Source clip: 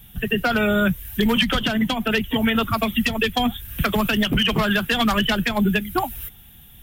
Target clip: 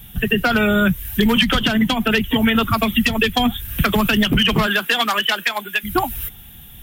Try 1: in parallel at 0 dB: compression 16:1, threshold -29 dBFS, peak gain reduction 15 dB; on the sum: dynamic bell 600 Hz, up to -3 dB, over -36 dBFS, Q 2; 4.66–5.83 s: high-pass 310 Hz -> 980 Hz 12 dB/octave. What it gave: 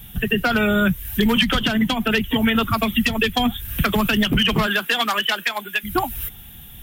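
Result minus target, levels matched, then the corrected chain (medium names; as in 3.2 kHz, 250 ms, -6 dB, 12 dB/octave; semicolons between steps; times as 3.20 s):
compression: peak gain reduction +8 dB
in parallel at 0 dB: compression 16:1, threshold -20.5 dBFS, peak gain reduction 7 dB; on the sum: dynamic bell 600 Hz, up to -3 dB, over -36 dBFS, Q 2; 4.66–5.83 s: high-pass 310 Hz -> 980 Hz 12 dB/octave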